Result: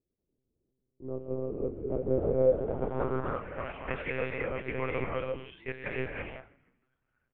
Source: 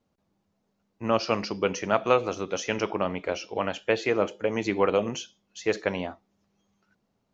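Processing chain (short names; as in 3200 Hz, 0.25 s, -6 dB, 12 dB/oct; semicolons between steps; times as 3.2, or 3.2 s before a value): 1.91–3.03 half-waves squared off; resonator 330 Hz, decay 0.38 s, harmonics odd, mix 60%; non-linear reverb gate 0.36 s rising, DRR -3 dB; monotone LPC vocoder at 8 kHz 130 Hz; low-pass sweep 390 Hz -> 2200 Hz, 2.15–3.8; frequency-shifting echo 0.157 s, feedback 46%, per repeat -92 Hz, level -22 dB; gain -6 dB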